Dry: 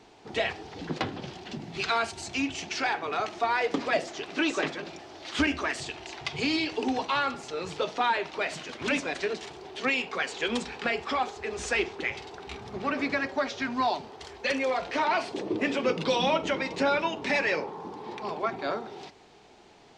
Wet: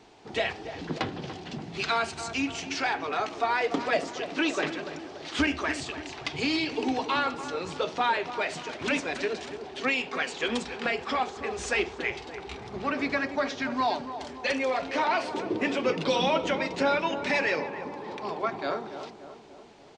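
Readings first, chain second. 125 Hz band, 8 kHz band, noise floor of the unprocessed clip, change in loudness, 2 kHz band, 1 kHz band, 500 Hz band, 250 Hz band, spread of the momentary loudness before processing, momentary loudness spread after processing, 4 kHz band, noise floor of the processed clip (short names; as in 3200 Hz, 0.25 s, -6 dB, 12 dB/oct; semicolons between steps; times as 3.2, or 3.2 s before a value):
+0.5 dB, 0.0 dB, -54 dBFS, 0.0 dB, 0.0 dB, +0.5 dB, +0.5 dB, +0.5 dB, 12 LU, 11 LU, 0.0 dB, -46 dBFS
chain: on a send: darkening echo 0.288 s, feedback 58%, low-pass 1400 Hz, level -10 dB; on the sum: downsampling 22050 Hz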